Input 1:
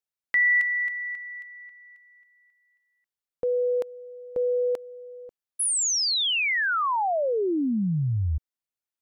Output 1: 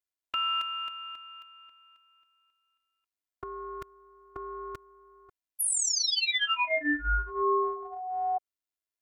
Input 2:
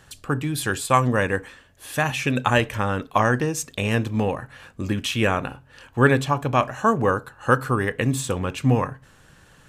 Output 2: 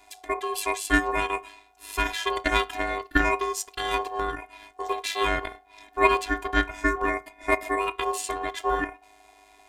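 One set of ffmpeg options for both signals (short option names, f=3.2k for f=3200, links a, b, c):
-af "afftfilt=real='hypot(re,im)*cos(PI*b)':imag='0':win_size=512:overlap=0.75,aeval=exprs='0.596*(cos(1*acos(clip(val(0)/0.596,-1,1)))-cos(1*PI/2))+0.0237*(cos(3*acos(clip(val(0)/0.596,-1,1)))-cos(3*PI/2))+0.00376*(cos(6*acos(clip(val(0)/0.596,-1,1)))-cos(6*PI/2))+0.00473*(cos(8*acos(clip(val(0)/0.596,-1,1)))-cos(8*PI/2))':c=same,aeval=exprs='val(0)*sin(2*PI*740*n/s)':c=same,volume=4.5dB"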